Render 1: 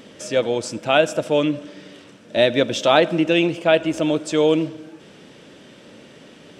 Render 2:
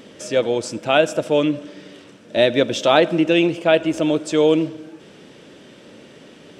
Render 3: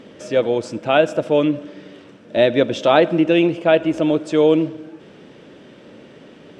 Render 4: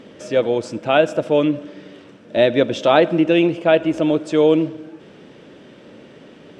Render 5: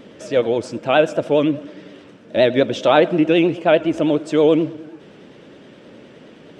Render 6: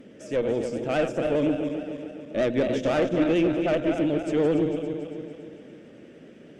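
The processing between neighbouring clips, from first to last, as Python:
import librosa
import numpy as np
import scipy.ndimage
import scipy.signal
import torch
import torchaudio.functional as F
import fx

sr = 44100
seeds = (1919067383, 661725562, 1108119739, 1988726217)

y1 = fx.peak_eq(x, sr, hz=380.0, db=2.5, octaves=0.77)
y2 = fx.lowpass(y1, sr, hz=2300.0, slope=6)
y2 = y2 * librosa.db_to_amplitude(1.5)
y3 = y2
y4 = fx.vibrato(y3, sr, rate_hz=9.6, depth_cents=80.0)
y5 = fx.reverse_delay_fb(y4, sr, ms=141, feedback_pct=71, wet_db=-7.0)
y5 = fx.tube_stage(y5, sr, drive_db=11.0, bias=0.4)
y5 = fx.graphic_eq_15(y5, sr, hz=(250, 1000, 4000), db=(3, -10, -9))
y5 = y5 * librosa.db_to_amplitude(-5.0)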